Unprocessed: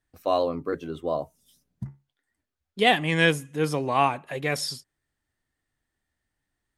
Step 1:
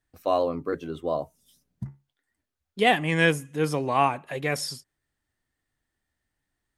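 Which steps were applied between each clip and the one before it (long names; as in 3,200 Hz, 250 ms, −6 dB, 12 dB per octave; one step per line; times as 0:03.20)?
dynamic equaliser 3,800 Hz, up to −6 dB, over −43 dBFS, Q 2.2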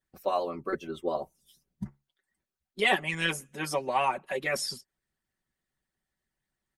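comb filter 5.3 ms, depth 87%
harmonic and percussive parts rebalanced harmonic −16 dB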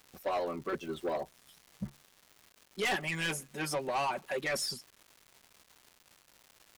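surface crackle 390 per second −45 dBFS
soft clipping −27.5 dBFS, distortion −8 dB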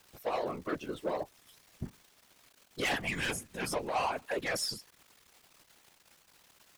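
random phases in short frames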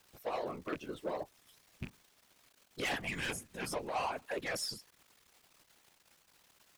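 loose part that buzzes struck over −38 dBFS, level −30 dBFS
level −4 dB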